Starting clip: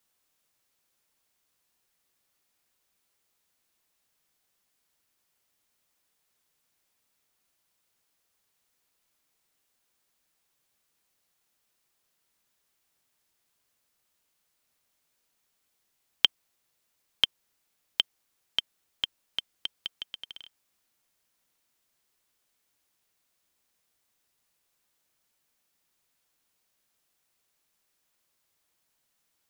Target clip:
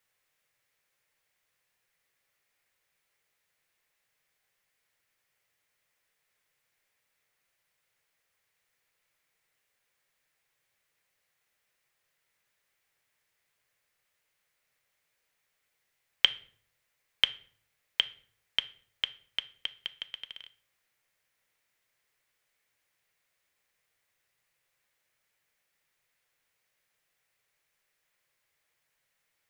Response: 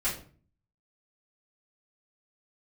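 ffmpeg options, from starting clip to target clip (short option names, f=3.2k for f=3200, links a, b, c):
-filter_complex "[0:a]equalizer=f=125:t=o:w=1:g=7,equalizer=f=250:t=o:w=1:g=-6,equalizer=f=500:t=o:w=1:g=6,equalizer=f=2k:t=o:w=1:g=11,asplit=2[a][b];[1:a]atrim=start_sample=2205,asetrate=33075,aresample=44100[c];[b][c]afir=irnorm=-1:irlink=0,volume=-21dB[d];[a][d]amix=inputs=2:normalize=0,volume=-5.5dB"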